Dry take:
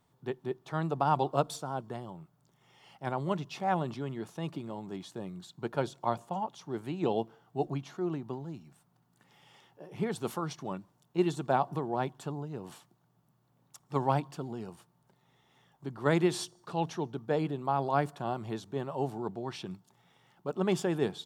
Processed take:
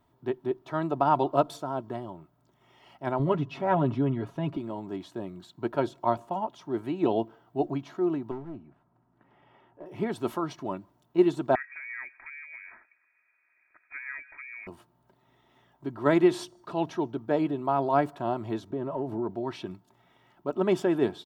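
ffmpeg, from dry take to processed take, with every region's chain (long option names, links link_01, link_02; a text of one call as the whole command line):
ffmpeg -i in.wav -filter_complex "[0:a]asettb=1/sr,asplit=3[link_01][link_02][link_03];[link_01]atrim=end=3.194[link_04];[link_02]atrim=start=3.19:end=4.57,asetpts=PTS-STARTPTS,afade=type=in:duration=0.004:curve=qsin,afade=type=out:start_time=1.376:duration=0.004:curve=qsin,bass=frequency=250:gain=7,treble=frequency=4000:gain=-8,aecho=1:1:7.3:0.62,atrim=end_sample=60858[link_05];[link_03]atrim=start=4.566[link_06];[link_04][link_05]acrossfade=duration=0.004:curve1=hsin:curve2=qsin[link_07];[link_07][link_06]acrossfade=duration=0.004:curve1=qsin:curve2=hsin,asettb=1/sr,asplit=3[link_08][link_09][link_10];[link_08]atrim=end=8.314[link_11];[link_09]atrim=start=8.31:end=9.86,asetpts=PTS-STARTPTS,afade=type=in:duration=0.004:curve=qsin,afade=type=out:start_time=1.546:duration=0.004:curve=qsin,lowpass=1700,aeval=exprs='clip(val(0),-1,0.00944)':channel_layout=same[link_12];[link_10]atrim=start=9.856[link_13];[link_11][link_12]acrossfade=duration=0.004:curve1=hsin:curve2=qsin[link_14];[link_14][link_13]acrossfade=duration=0.004:curve1=qsin:curve2=hsin,asettb=1/sr,asplit=3[link_15][link_16][link_17];[link_15]atrim=end=11.554[link_18];[link_16]atrim=start=11.55:end=14.67,asetpts=PTS-STARTPTS,afade=type=in:duration=0.004:curve=qsin,afade=type=out:start_time=3.116:duration=0.004:curve=qsin,equalizer=frequency=680:width=1.5:gain=4,acompressor=threshold=-43dB:ratio=2.5:attack=3.2:release=140:knee=1:detection=peak,lowpass=frequency=2200:width_type=q:width=0.5098,lowpass=frequency=2200:width_type=q:width=0.6013,lowpass=frequency=2200:width_type=q:width=0.9,lowpass=frequency=2200:width_type=q:width=2.563,afreqshift=-2600[link_19];[link_17]atrim=start=14.666[link_20];[link_18][link_19]acrossfade=duration=0.004:curve1=hsin:curve2=qsin[link_21];[link_21][link_20]acrossfade=duration=0.004:curve1=qsin:curve2=hsin,asettb=1/sr,asplit=3[link_22][link_23][link_24];[link_22]atrim=end=18.704[link_25];[link_23]atrim=start=18.7:end=19.3,asetpts=PTS-STARTPTS,afade=type=in:duration=0.004:curve=qsin,afade=type=out:start_time=0.596:duration=0.004:curve=qsin,tiltshelf=frequency=1300:gain=5.5,bandreject=frequency=760:width=8.7,acompressor=threshold=-32dB:ratio=4:attack=3.2:release=140:knee=1:detection=peak[link_26];[link_24]atrim=start=19.296[link_27];[link_25][link_26]acrossfade=duration=0.004:curve1=hsin:curve2=qsin[link_28];[link_28][link_27]acrossfade=duration=0.004:curve1=qsin:curve2=hsin,equalizer=frequency=8200:width=0.45:gain=-11,aecho=1:1:3.1:0.53,volume=4dB" out.wav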